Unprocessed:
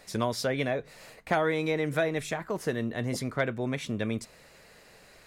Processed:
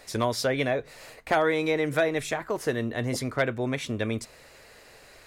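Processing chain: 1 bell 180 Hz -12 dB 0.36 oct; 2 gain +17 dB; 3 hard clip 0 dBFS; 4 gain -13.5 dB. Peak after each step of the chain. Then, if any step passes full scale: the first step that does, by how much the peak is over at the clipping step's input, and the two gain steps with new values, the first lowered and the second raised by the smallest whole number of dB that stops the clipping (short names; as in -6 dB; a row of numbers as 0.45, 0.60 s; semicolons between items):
-13.0, +4.0, 0.0, -13.5 dBFS; step 2, 4.0 dB; step 2 +13 dB, step 4 -9.5 dB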